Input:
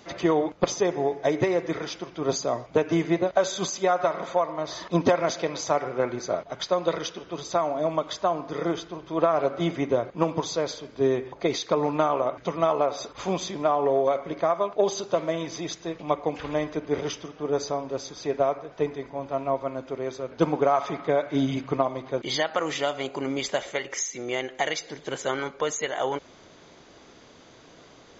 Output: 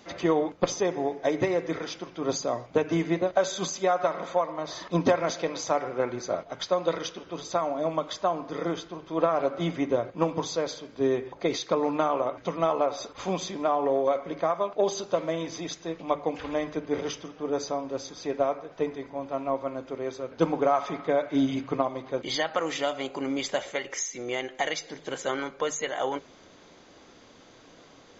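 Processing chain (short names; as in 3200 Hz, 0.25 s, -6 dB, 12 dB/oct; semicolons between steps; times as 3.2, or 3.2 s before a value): notches 50/100/150 Hz; on a send: reverb RT60 0.20 s, pre-delay 4 ms, DRR 13 dB; on the sum: gain -2 dB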